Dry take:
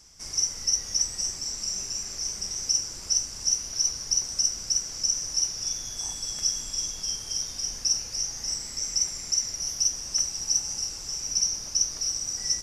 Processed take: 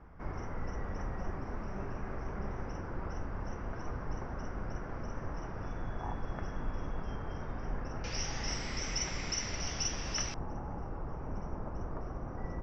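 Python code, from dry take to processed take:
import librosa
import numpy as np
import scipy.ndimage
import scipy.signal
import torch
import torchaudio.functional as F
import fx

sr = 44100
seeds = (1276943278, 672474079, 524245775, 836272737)

y = fx.lowpass(x, sr, hz=fx.steps((0.0, 1500.0), (8.04, 3300.0), (10.34, 1200.0)), slope=24)
y = y * librosa.db_to_amplitude(9.0)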